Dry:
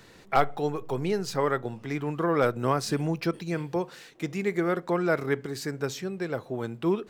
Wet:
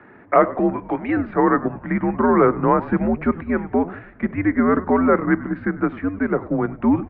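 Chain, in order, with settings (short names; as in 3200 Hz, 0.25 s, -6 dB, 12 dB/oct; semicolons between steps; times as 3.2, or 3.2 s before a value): 0.73–1.17 tilt +4 dB/oct; mistuned SSB -100 Hz 250–2100 Hz; in parallel at +2 dB: level quantiser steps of 17 dB; on the sum: frequency-shifting echo 98 ms, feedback 47%, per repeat -75 Hz, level -17 dB; gain +6.5 dB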